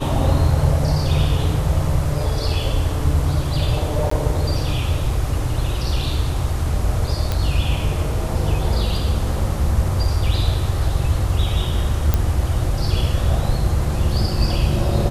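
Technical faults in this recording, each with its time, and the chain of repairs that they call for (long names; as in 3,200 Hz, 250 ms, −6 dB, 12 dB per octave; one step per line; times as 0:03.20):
0:04.10–0:04.11: drop-out 14 ms
0:07.32: click −8 dBFS
0:12.14: click −4 dBFS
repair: click removal
repair the gap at 0:04.10, 14 ms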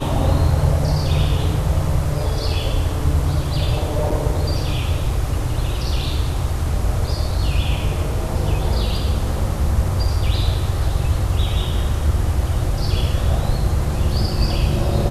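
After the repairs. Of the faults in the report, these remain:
none of them is left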